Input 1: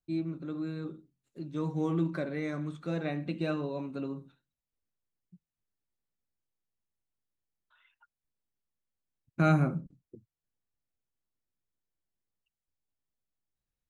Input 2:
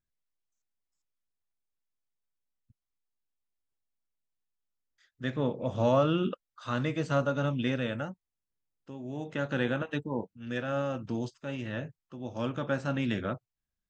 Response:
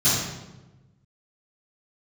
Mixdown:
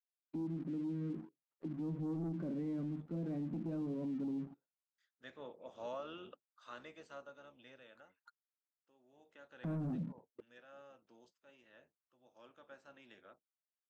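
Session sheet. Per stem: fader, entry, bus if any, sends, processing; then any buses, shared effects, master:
0.0 dB, 0.25 s, no send, auto-wah 230–1400 Hz, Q 3, down, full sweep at -38 dBFS; waveshaping leveller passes 2
6.72 s -15.5 dB -> 7.40 s -23.5 dB, 0.00 s, no send, octave divider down 1 oct, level -1 dB; high-pass 470 Hz 12 dB/octave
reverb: none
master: peak limiter -34.5 dBFS, peak gain reduction 10 dB

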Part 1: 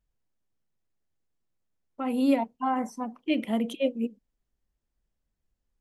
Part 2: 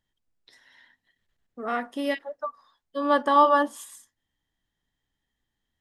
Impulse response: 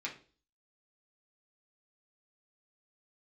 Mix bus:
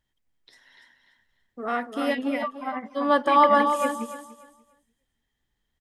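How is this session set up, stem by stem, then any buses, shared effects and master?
-2.0 dB, 0.00 s, no send, echo send -16.5 dB, tremolo triangle 12 Hz, depth 85%; resonant low-pass 2.1 kHz, resonance Q 4.4
+1.0 dB, 0.00 s, no send, echo send -7.5 dB, none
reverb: none
echo: feedback delay 292 ms, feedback 23%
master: none

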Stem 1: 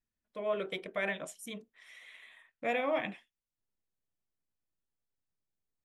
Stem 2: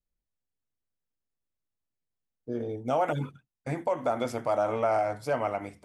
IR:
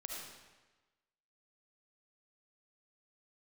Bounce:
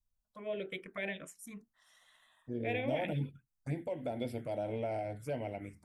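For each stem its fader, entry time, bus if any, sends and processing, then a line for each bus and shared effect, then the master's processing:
-2.0 dB, 0.00 s, no send, none
-4.0 dB, 0.00 s, no send, peaking EQ 1.2 kHz -5.5 dB 2.1 oct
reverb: none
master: bass shelf 92 Hz +6.5 dB; touch-sensitive phaser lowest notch 350 Hz, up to 1.2 kHz, full sweep at -32.5 dBFS

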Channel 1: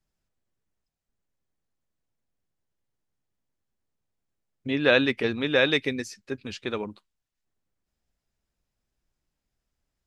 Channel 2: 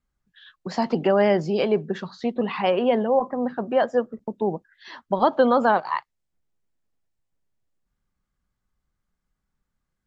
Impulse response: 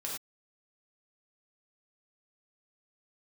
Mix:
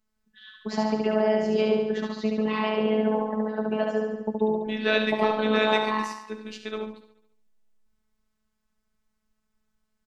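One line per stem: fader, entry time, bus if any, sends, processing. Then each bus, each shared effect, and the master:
-4.5 dB, 0.00 s, send -4 dB, echo send -10.5 dB, none
+1.5 dB, 0.00 s, no send, echo send -3 dB, compression, threshold -21 dBFS, peak gain reduction 8.5 dB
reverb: on, pre-delay 3 ms
echo: feedback delay 71 ms, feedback 56%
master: robot voice 216 Hz

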